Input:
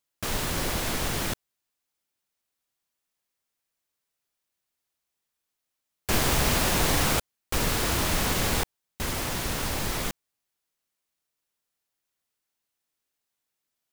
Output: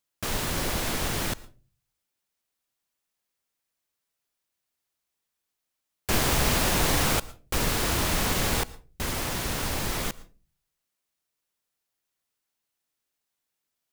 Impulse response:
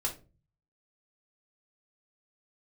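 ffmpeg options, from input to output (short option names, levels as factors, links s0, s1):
-filter_complex "[0:a]asplit=2[s0][s1];[1:a]atrim=start_sample=2205,adelay=111[s2];[s1][s2]afir=irnorm=-1:irlink=0,volume=0.0631[s3];[s0][s3]amix=inputs=2:normalize=0"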